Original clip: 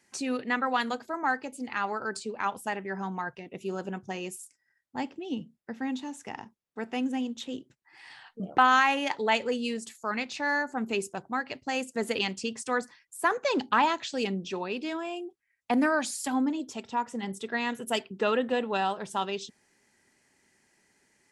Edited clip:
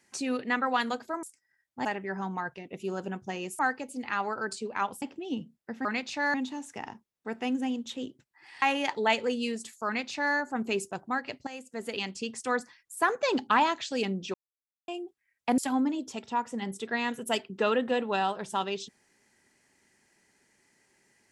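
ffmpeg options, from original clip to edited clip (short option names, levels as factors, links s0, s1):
-filter_complex "[0:a]asplit=12[s0][s1][s2][s3][s4][s5][s6][s7][s8][s9][s10][s11];[s0]atrim=end=1.232[s12];[s1]atrim=start=4.398:end=5.022[s13];[s2]atrim=start=2.658:end=4.402[s14];[s3]atrim=start=1.228:end=2.662[s15];[s4]atrim=start=5.018:end=5.852[s16];[s5]atrim=start=10.078:end=10.572[s17];[s6]atrim=start=5.848:end=8.132[s18];[s7]atrim=start=8.838:end=11.69,asetpts=PTS-STARTPTS,afade=t=out:st=2.848:d=0.004:c=hsin:silence=0.211349[s19];[s8]atrim=start=11.69:end=14.56,asetpts=PTS-STARTPTS,afade=t=in:d=1.08:silence=0.211349,afade=t=out:st=2.866:d=0.004:c=hsin[s20];[s9]atrim=start=14.56:end=15.1,asetpts=PTS-STARTPTS,volume=0[s21];[s10]atrim=start=15.1:end=15.802,asetpts=PTS-STARTPTS,afade=t=in:d=0.004:c=hsin[s22];[s11]atrim=start=16.188[s23];[s12][s13]acrossfade=d=0.004:c1=hsin:c2=hsin[s24];[s24][s14]acrossfade=d=0.004:c1=hsin:c2=hsin[s25];[s25][s15]acrossfade=d=0.004:c1=hsin:c2=hsin[s26];[s26][s16]acrossfade=d=0.004:c1=hsin:c2=hsin[s27];[s27][s17]acrossfade=d=0.004:c1=hsin:c2=hsin[s28];[s28][s18]acrossfade=d=0.004:c1=hsin:c2=hsin[s29];[s19][s20][s21][s22]concat=n=4:v=0:a=1[s30];[s29][s30]acrossfade=d=0.004:c1=hsin:c2=hsin[s31];[s31][s23]acrossfade=d=0.004:c1=hsin:c2=hsin"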